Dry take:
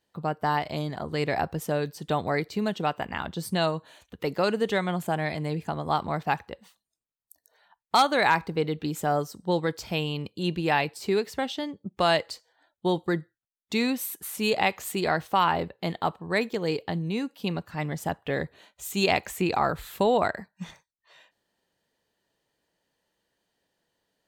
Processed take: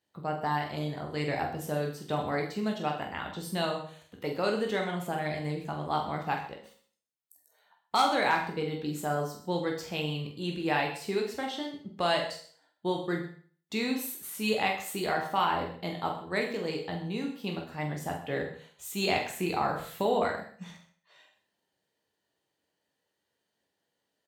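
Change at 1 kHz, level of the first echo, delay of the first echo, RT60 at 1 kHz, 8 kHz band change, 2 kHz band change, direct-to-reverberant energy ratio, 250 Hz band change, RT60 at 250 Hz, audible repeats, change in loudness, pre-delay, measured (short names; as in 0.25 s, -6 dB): -4.0 dB, -7.5 dB, 46 ms, 0.45 s, -3.5 dB, -4.0 dB, 0.5 dB, -4.0 dB, 0.50 s, 2, -4.0 dB, 13 ms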